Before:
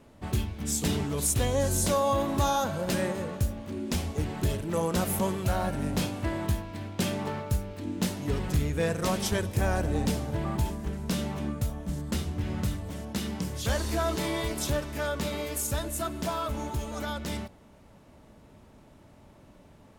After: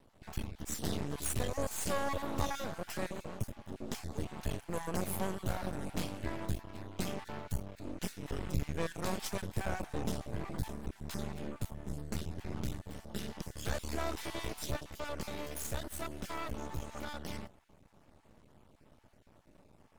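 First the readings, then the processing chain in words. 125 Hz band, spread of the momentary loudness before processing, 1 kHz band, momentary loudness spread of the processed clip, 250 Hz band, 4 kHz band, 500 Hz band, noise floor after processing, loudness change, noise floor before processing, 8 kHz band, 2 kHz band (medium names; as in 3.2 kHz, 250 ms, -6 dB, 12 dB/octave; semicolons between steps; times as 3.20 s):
-10.5 dB, 7 LU, -9.0 dB, 7 LU, -10.0 dB, -9.0 dB, -10.0 dB, -63 dBFS, -10.0 dB, -55 dBFS, -10.0 dB, -7.5 dB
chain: random holes in the spectrogram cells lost 23%; half-wave rectifier; trim -4 dB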